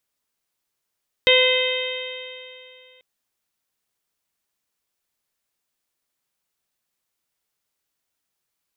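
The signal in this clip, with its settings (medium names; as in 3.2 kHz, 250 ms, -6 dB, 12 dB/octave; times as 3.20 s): stretched partials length 1.74 s, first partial 508 Hz, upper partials -15/-15/-2/-5/-1/-4 dB, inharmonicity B 0.0016, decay 2.62 s, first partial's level -15.5 dB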